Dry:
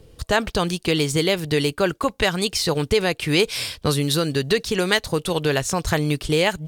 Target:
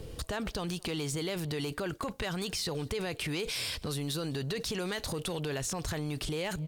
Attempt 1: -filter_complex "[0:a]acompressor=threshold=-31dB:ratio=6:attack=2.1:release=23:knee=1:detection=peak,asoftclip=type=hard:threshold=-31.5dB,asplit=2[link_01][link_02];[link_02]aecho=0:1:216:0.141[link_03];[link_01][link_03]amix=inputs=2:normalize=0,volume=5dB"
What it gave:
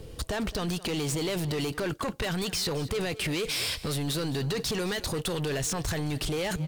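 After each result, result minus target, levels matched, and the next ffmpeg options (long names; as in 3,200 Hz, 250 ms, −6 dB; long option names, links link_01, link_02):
downward compressor: peak gain reduction −6.5 dB; echo-to-direct +10 dB
-filter_complex "[0:a]acompressor=threshold=-39dB:ratio=6:attack=2.1:release=23:knee=1:detection=peak,asoftclip=type=hard:threshold=-31.5dB,asplit=2[link_01][link_02];[link_02]aecho=0:1:216:0.141[link_03];[link_01][link_03]amix=inputs=2:normalize=0,volume=5dB"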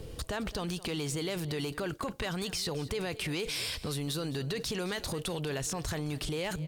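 echo-to-direct +10 dB
-filter_complex "[0:a]acompressor=threshold=-39dB:ratio=6:attack=2.1:release=23:knee=1:detection=peak,asoftclip=type=hard:threshold=-31.5dB,asplit=2[link_01][link_02];[link_02]aecho=0:1:216:0.0447[link_03];[link_01][link_03]amix=inputs=2:normalize=0,volume=5dB"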